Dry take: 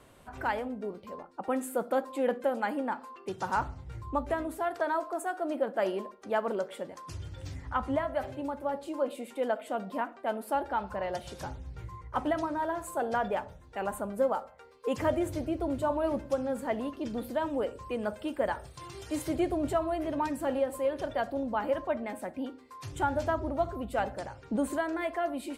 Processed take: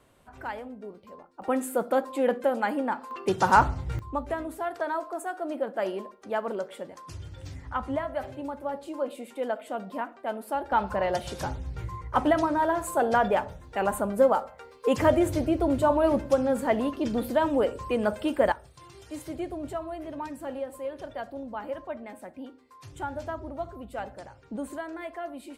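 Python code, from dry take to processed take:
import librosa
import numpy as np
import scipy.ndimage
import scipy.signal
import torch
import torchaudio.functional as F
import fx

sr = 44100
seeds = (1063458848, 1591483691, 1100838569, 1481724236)

y = fx.gain(x, sr, db=fx.steps((0.0, -4.5), (1.42, 4.0), (3.11, 11.0), (3.99, 0.0), (10.72, 7.0), (18.52, -5.0)))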